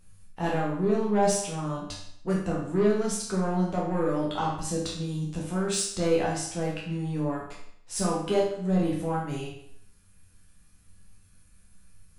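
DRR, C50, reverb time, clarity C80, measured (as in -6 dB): -4.5 dB, 3.0 dB, 0.65 s, 6.5 dB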